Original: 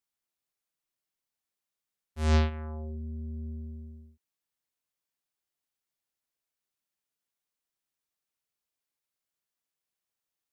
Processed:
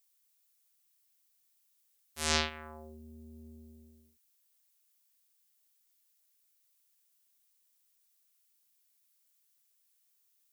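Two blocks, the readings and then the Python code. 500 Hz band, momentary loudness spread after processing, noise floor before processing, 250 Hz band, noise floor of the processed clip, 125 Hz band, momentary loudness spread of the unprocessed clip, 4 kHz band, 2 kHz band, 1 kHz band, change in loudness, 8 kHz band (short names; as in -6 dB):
-5.0 dB, 23 LU, under -85 dBFS, -9.5 dB, -73 dBFS, under -15 dB, 20 LU, +8.5 dB, +4.0 dB, -0.5 dB, -3.5 dB, +12.5 dB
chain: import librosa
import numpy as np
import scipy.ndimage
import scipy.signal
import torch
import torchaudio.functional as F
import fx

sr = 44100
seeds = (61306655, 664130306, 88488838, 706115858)

y = fx.tilt_eq(x, sr, slope=4.5)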